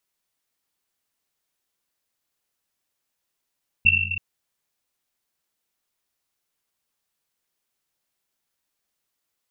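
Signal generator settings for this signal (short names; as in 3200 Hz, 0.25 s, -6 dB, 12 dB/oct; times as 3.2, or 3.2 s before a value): Risset drum length 0.33 s, pitch 92 Hz, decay 2.62 s, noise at 2700 Hz, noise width 110 Hz, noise 75%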